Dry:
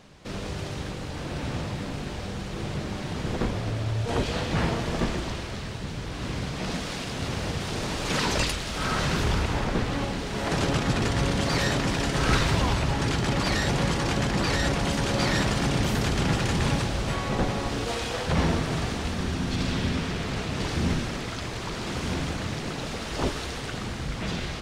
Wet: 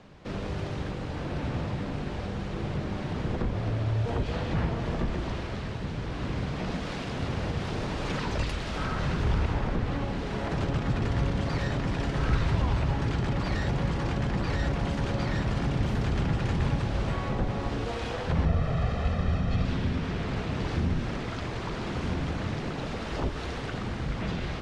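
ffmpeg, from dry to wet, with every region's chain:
-filter_complex "[0:a]asettb=1/sr,asplit=3[a][b][c];[a]atrim=end=18.454[d];[b]atrim=start=18.45:end=19.65,asetpts=PTS-STARTPTS,afade=t=in:d=0.004:c=qsin,afade=t=out:st=1.196:d=0.004:c=qsin,aemphasis=mode=reproduction:type=cd,aecho=1:1:1.6:0.65,atrim=end_sample=52920[e];[c]atrim=start=19.646[f];[d][e]acrossfade=d=0.004:c1=hsin:c2=qsin[g];[g][f]acrossfade=d=0.004:c1=qsin:c2=hsin,aemphasis=mode=reproduction:type=75fm,acrossover=split=140[h][i];[i]acompressor=threshold=-30dB:ratio=6[j];[h][j]amix=inputs=2:normalize=0"

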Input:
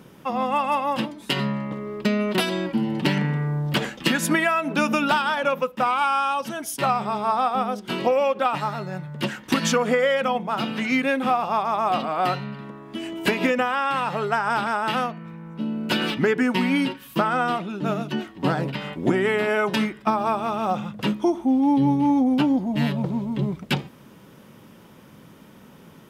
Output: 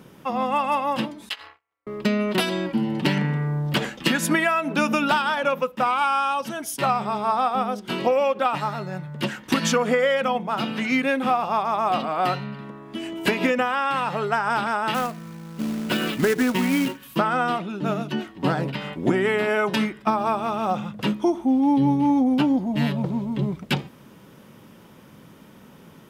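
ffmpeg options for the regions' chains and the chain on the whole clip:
-filter_complex "[0:a]asettb=1/sr,asplit=3[a][b][c];[a]atrim=end=1.294[d];[b]atrim=start=1.29:end=1.87,asetpts=PTS-STARTPTS,afade=t=in:d=0.004:c=qsin,afade=t=out:st=0.576:d=0.004:c=qsin,agate=range=-38dB:threshold=-24dB:ratio=16:release=100:detection=peak,highpass=1.1k,aeval=exprs='val(0)*sin(2*PI*120*n/s)':c=same[e];[c]atrim=start=1.866[f];[d][e]acrossfade=d=0.004:c1=hsin:c2=qsin[g];[g][f]acrossfade=d=0.004:c1=qsin:c2=hsin,asettb=1/sr,asplit=3[h][i][j];[h]atrim=end=14.944[k];[i]atrim=start=14.94:end=17.03,asetpts=PTS-STARTPTS,afade=t=in:d=0.004:c=qsin,afade=t=out:st=2.086:d=0.004:c=qsin,equalizer=f=11k:t=o:w=2:g=-10,bandreject=f=880:w=14,acrusher=bits=3:mode=log:mix=0:aa=0.000001[l];[j]atrim=start=17.026[m];[k][l]acrossfade=d=0.004:c1=hsin:c2=qsin[n];[n][m]acrossfade=d=0.004:c1=qsin:c2=hsin"

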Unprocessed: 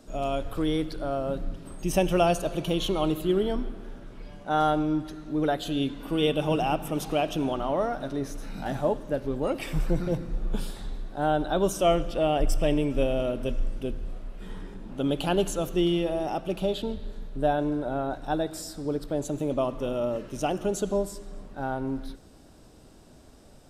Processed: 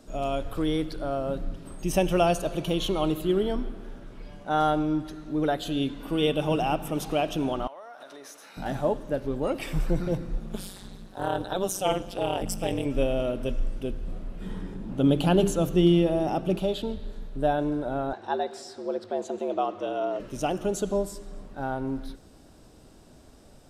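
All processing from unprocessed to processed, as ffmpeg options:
-filter_complex "[0:a]asettb=1/sr,asplit=3[a][b][c];[a]atrim=end=7.674[d];[b]atrim=start=7.67:end=8.57,asetpts=PTS-STARTPTS,afade=t=in:d=0.004:c=qsin,afade=t=out:st=0.896:d=0.004:c=qsin,highpass=720,acompressor=threshold=-40dB:ratio=10:attack=3.2:release=140:knee=1:detection=peak[e];[c]atrim=start=8.566[f];[d][e]acrossfade=d=0.004:c1=hsin:c2=qsin[g];[g][f]acrossfade=d=0.004:c1=qsin:c2=hsin,asettb=1/sr,asplit=3[h][i][j];[h]atrim=end=10.404[k];[i]atrim=start=10.4:end=12.86,asetpts=PTS-STARTPTS,afade=t=in:d=0.004:c=qsin,afade=t=out:st=2.456:d=0.004:c=qsin,highpass=f=57:p=1,highshelf=f=3.9k:g=9,tremolo=f=190:d=0.974[l];[j]atrim=start=12.856[m];[k][l]acrossfade=d=0.004:c1=hsin:c2=qsin[n];[n][m]acrossfade=d=0.004:c1=qsin:c2=hsin,asettb=1/sr,asplit=3[o][p][q];[o]atrim=end=14.074[r];[p]atrim=start=14.07:end=16.59,asetpts=PTS-STARTPTS,afade=t=in:d=0.004:c=qsin,afade=t=out:st=2.516:d=0.004:c=qsin,equalizer=f=150:t=o:w=2.8:g=8.5,bandreject=f=50:t=h:w=6,bandreject=f=100:t=h:w=6,bandreject=f=150:t=h:w=6,bandreject=f=200:t=h:w=6,bandreject=f=250:t=h:w=6,bandreject=f=300:t=h:w=6,bandreject=f=350:t=h:w=6,bandreject=f=400:t=h:w=6,bandreject=f=450:t=h:w=6[s];[q]atrim=start=16.586[t];[r][s]acrossfade=d=0.004:c1=hsin:c2=qsin[u];[u][t]acrossfade=d=0.004:c1=qsin:c2=hsin,asettb=1/sr,asplit=3[v][w][x];[v]atrim=end=18.134[y];[w]atrim=start=18.13:end=20.2,asetpts=PTS-STARTPTS,afade=t=in:d=0.004:c=qsin,afade=t=out:st=2.066:d=0.004:c=qsin,afreqshift=74,highpass=290,lowpass=5.3k[z];[x]atrim=start=20.196[aa];[y][z]acrossfade=d=0.004:c1=hsin:c2=qsin[ab];[ab][aa]acrossfade=d=0.004:c1=qsin:c2=hsin"

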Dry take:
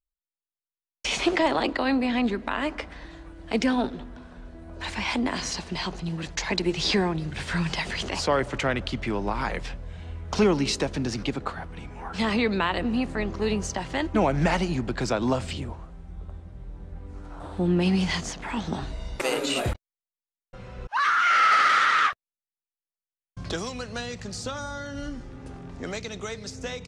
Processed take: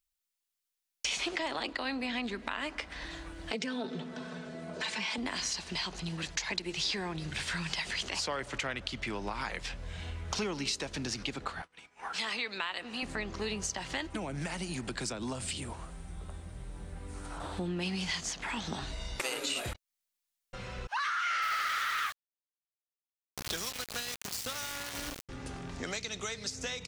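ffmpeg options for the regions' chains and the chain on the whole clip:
-filter_complex "[0:a]asettb=1/sr,asplit=3[a][b][c];[a]atrim=end=3.514[d];[b]atrim=start=3.51:end=5.18,asetpts=PTS-STARTPTS,afade=t=in:d=0.004:c=qsin,afade=t=out:st=1.666:d=0.004:c=qsin,aecho=1:1:4.6:0.68,atrim=end_sample=73647,acompressor=threshold=-28dB:ratio=2.5:attack=3.2:release=140:knee=1:detection=peak,highpass=f=120:w=0.5412,highpass=f=120:w=1.3066,equalizer=f=160:t=q:w=4:g=10,equalizer=f=360:t=q:w=4:g=6,equalizer=f=520:t=q:w=4:g=8,lowpass=f=8.9k:w=0.5412,lowpass=f=8.9k:w=1.3066[e];[c]atrim=start=5.176[f];[d][e]acrossfade=d=0.004:c1=hsin:c2=qsin[g];[g][f]acrossfade=d=0.004:c1=qsin:c2=hsin,asettb=1/sr,asplit=3[h][i][j];[h]atrim=end=11.624[k];[i]atrim=start=11.62:end=13.03,asetpts=PTS-STARTPTS,afade=t=in:d=0.004:c=qsin,afade=t=out:st=1.406:d=0.004:c=qsin,highpass=f=760:p=1,agate=range=-33dB:threshold=-39dB:ratio=3:release=100:detection=peak[l];[j]atrim=start=13.026[m];[k][l]acrossfade=d=0.004:c1=hsin:c2=qsin[n];[n][m]acrossfade=d=0.004:c1=qsin:c2=hsin,asettb=1/sr,asplit=3[o][p][q];[o]atrim=end=14.104[r];[p]atrim=start=14.1:end=17.38,asetpts=PTS-STARTPTS,afade=t=in:d=0.004:c=qsin,afade=t=out:st=3.276:d=0.004:c=qsin,equalizer=f=9.1k:t=o:w=0.39:g=13.5,acrossover=split=120|360[s][t][u];[s]acompressor=threshold=-38dB:ratio=4[v];[t]acompressor=threshold=-28dB:ratio=4[w];[u]acompressor=threshold=-34dB:ratio=4[x];[v][w][x]amix=inputs=3:normalize=0[y];[q]atrim=start=17.376[z];[r][y]acrossfade=d=0.004:c1=hsin:c2=qsin[aa];[aa][z]acrossfade=d=0.004:c1=qsin:c2=hsin,asettb=1/sr,asplit=3[ab][ac][ad];[ab]atrim=end=21.424[ae];[ac]atrim=start=21.42:end=25.29,asetpts=PTS-STARTPTS,afade=t=in:d=0.004:c=qsin,afade=t=out:st=3.866:d=0.004:c=qsin,aeval=exprs='val(0)+0.00355*(sin(2*PI*60*n/s)+sin(2*PI*2*60*n/s)/2+sin(2*PI*3*60*n/s)/3+sin(2*PI*4*60*n/s)/4+sin(2*PI*5*60*n/s)/5)':c=same,aeval=exprs='val(0)*gte(abs(val(0)),0.0266)':c=same[af];[ad]atrim=start=25.286[ag];[ae][af]acrossfade=d=0.004:c1=hsin:c2=qsin[ah];[ah][ag]acrossfade=d=0.004:c1=qsin:c2=hsin,tiltshelf=f=1.4k:g=-6,acompressor=threshold=-40dB:ratio=3,volume=4dB"

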